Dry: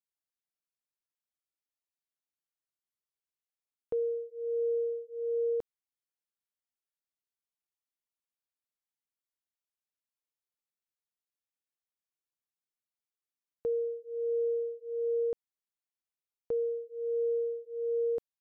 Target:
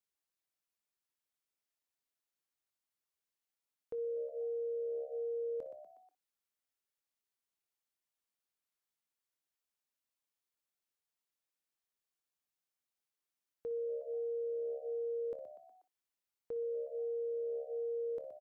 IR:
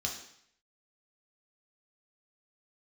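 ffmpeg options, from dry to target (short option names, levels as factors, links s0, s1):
-filter_complex "[0:a]asplit=2[s0][s1];[s1]asplit=4[s2][s3][s4][s5];[s2]adelay=121,afreqshift=69,volume=0.0944[s6];[s3]adelay=242,afreqshift=138,volume=0.0519[s7];[s4]adelay=363,afreqshift=207,volume=0.0285[s8];[s5]adelay=484,afreqshift=276,volume=0.0157[s9];[s6][s7][s8][s9]amix=inputs=4:normalize=0[s10];[s0][s10]amix=inputs=2:normalize=0,alimiter=level_in=4.22:limit=0.0631:level=0:latency=1:release=10,volume=0.237,bass=f=250:g=-3,treble=f=4000:g=0,asplit=2[s11][s12];[s12]aecho=0:1:23|60:0.168|0.158[s13];[s11][s13]amix=inputs=2:normalize=0,volume=1.19"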